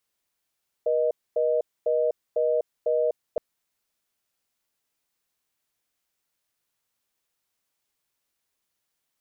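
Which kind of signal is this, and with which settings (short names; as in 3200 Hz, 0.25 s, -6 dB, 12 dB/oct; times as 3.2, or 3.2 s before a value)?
call progress tone reorder tone, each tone -23 dBFS 2.52 s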